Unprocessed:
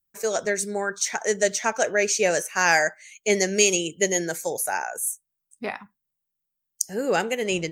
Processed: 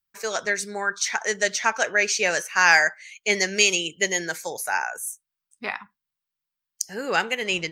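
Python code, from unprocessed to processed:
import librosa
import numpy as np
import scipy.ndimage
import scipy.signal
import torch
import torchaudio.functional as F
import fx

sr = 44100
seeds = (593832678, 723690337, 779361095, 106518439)

y = fx.band_shelf(x, sr, hz=2200.0, db=9.5, octaves=2.9)
y = F.gain(torch.from_numpy(y), -5.0).numpy()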